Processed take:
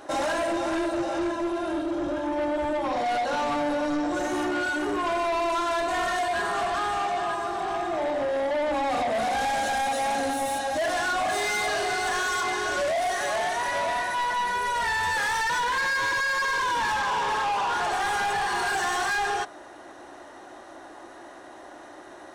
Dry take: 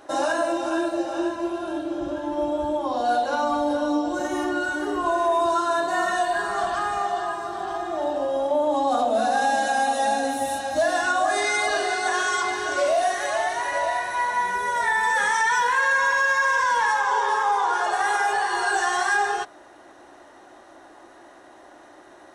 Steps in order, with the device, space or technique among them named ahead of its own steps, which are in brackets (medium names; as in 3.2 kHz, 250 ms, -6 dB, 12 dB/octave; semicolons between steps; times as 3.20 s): saturation between pre-emphasis and de-emphasis (treble shelf 10 kHz +10 dB; saturation -27 dBFS, distortion -8 dB; treble shelf 10 kHz -10 dB); trim +3.5 dB